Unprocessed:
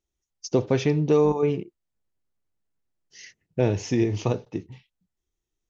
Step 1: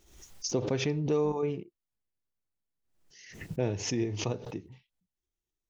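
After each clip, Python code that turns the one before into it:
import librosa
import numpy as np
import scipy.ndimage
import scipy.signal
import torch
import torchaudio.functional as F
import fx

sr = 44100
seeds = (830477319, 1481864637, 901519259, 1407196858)

y = fx.pre_swell(x, sr, db_per_s=72.0)
y = y * 10.0 ** (-8.5 / 20.0)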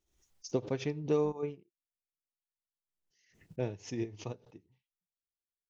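y = fx.upward_expand(x, sr, threshold_db=-38.0, expansion=2.5)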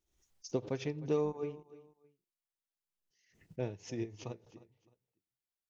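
y = fx.echo_feedback(x, sr, ms=307, feedback_pct=28, wet_db=-18.0)
y = y * 10.0 ** (-2.5 / 20.0)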